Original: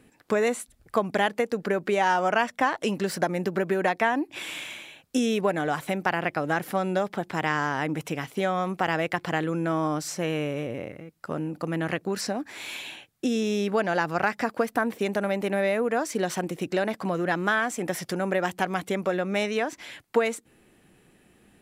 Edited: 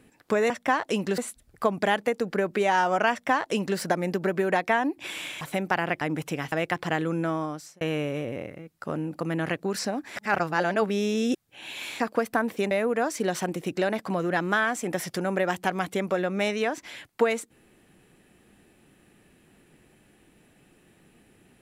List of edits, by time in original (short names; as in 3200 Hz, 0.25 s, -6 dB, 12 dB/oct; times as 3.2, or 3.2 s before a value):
2.43–3.11 copy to 0.5
4.73–5.76 cut
6.36–7.8 cut
8.31–8.94 cut
9.62–10.23 fade out
12.58–14.42 reverse
15.13–15.66 cut